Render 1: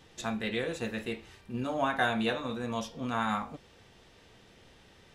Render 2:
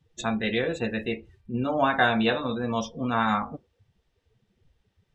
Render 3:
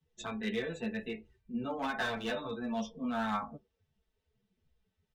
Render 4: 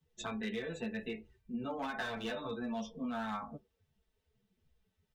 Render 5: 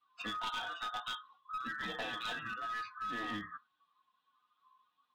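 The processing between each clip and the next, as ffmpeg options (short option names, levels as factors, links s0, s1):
-af "afftdn=nr=26:nf=-44,volume=2.11"
-filter_complex "[0:a]aecho=1:1:4.6:0.48,acrossover=split=130[s0][s1];[s1]asoftclip=type=hard:threshold=0.133[s2];[s0][s2]amix=inputs=2:normalize=0,asplit=2[s3][s4];[s4]adelay=9.4,afreqshift=-2.6[s5];[s3][s5]amix=inputs=2:normalize=1,volume=0.422"
-af "acompressor=threshold=0.0158:ratio=6,volume=1.12"
-af "afftfilt=real='real(if(lt(b,960),b+48*(1-2*mod(floor(b/48),2)),b),0)':imag='imag(if(lt(b,960),b+48*(1-2*mod(floor(b/48),2)),b),0)':win_size=2048:overlap=0.75,highpass=170,equalizer=f=190:t=q:w=4:g=5,equalizer=f=530:t=q:w=4:g=-10,equalizer=f=880:t=q:w=4:g=5,equalizer=f=1400:t=q:w=4:g=-6,equalizer=f=2100:t=q:w=4:g=-6,equalizer=f=3300:t=q:w=4:g=8,lowpass=f=4200:w=0.5412,lowpass=f=4200:w=1.3066,aeval=exprs='clip(val(0),-1,0.0112)':c=same,volume=1.33"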